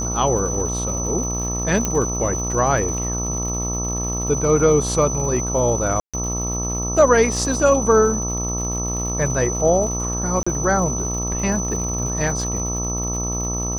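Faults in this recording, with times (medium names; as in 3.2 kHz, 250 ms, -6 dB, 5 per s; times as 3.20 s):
buzz 60 Hz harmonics 22 -26 dBFS
crackle 140 per s -30 dBFS
whine 6 kHz -25 dBFS
1.85 s: pop -7 dBFS
6.00–6.14 s: dropout 136 ms
10.43–10.46 s: dropout 35 ms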